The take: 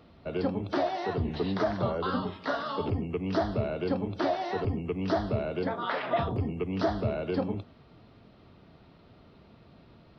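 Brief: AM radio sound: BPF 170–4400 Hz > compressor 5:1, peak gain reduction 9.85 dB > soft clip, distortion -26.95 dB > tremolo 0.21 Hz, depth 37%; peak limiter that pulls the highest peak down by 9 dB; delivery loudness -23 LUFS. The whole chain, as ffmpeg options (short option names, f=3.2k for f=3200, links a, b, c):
-af "alimiter=limit=-24dB:level=0:latency=1,highpass=170,lowpass=4.4k,acompressor=threshold=-39dB:ratio=5,asoftclip=threshold=-30dB,tremolo=f=0.21:d=0.37,volume=21.5dB"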